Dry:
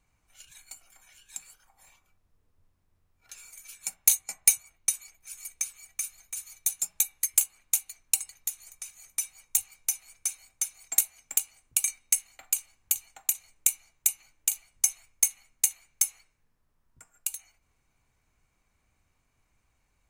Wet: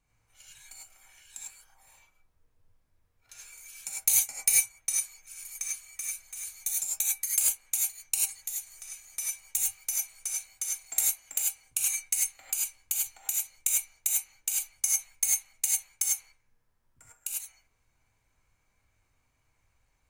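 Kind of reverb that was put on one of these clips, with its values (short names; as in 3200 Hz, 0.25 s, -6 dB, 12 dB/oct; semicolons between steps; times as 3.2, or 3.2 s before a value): non-linear reverb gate 0.12 s rising, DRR -4.5 dB; gain -5.5 dB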